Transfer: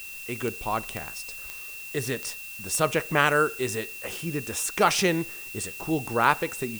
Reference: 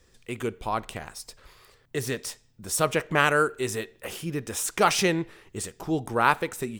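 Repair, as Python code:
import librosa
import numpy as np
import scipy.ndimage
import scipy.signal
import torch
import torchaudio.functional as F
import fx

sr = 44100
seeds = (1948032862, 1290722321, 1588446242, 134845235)

y = fx.fix_declick_ar(x, sr, threshold=10.0)
y = fx.notch(y, sr, hz=2700.0, q=30.0)
y = fx.noise_reduce(y, sr, print_start_s=1.44, print_end_s=1.94, reduce_db=19.0)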